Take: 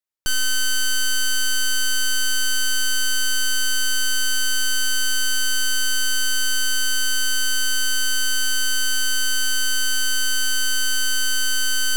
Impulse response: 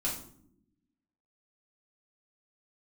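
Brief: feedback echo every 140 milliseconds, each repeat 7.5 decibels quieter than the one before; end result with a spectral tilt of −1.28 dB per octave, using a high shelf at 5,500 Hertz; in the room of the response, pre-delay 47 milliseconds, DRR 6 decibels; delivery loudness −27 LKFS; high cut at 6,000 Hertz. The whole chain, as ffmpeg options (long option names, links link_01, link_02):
-filter_complex "[0:a]lowpass=6000,highshelf=frequency=5500:gain=-8,aecho=1:1:140|280|420|560|700:0.422|0.177|0.0744|0.0312|0.0131,asplit=2[link_01][link_02];[1:a]atrim=start_sample=2205,adelay=47[link_03];[link_02][link_03]afir=irnorm=-1:irlink=0,volume=-10.5dB[link_04];[link_01][link_04]amix=inputs=2:normalize=0,volume=-5.5dB"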